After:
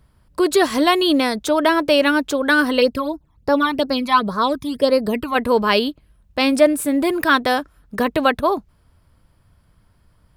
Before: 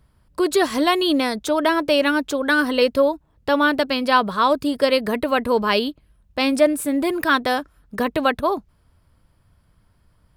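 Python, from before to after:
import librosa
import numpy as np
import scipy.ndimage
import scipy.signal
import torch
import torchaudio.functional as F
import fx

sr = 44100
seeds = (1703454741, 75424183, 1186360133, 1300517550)

y = fx.phaser_stages(x, sr, stages=12, low_hz=470.0, high_hz=3200.0, hz=fx.line((2.8, 3.9), (5.34, 1.2)), feedback_pct=25, at=(2.8, 5.34), fade=0.02)
y = y * librosa.db_to_amplitude(2.5)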